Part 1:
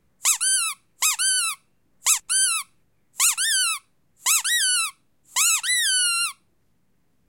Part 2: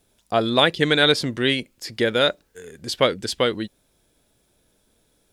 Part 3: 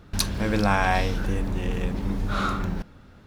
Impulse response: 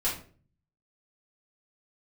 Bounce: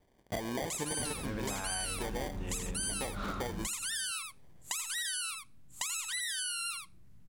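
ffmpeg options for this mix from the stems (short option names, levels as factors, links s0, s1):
-filter_complex "[0:a]asubboost=boost=3.5:cutoff=220,alimiter=limit=0.237:level=0:latency=1:release=264,adelay=450,volume=0.75,asplit=2[s0][s1];[s1]volume=0.422[s2];[1:a]acrusher=samples=33:mix=1:aa=0.000001,volume=0.596,asplit=2[s3][s4];[s4]volume=0.0944[s5];[2:a]adelay=850,volume=0.708[s6];[s3][s6]amix=inputs=2:normalize=0,asoftclip=type=tanh:threshold=0.299,alimiter=limit=0.15:level=0:latency=1:release=226,volume=1[s7];[s2][s5]amix=inputs=2:normalize=0,aecho=0:1:83:1[s8];[s0][s7][s8]amix=inputs=3:normalize=0,acompressor=threshold=0.02:ratio=6"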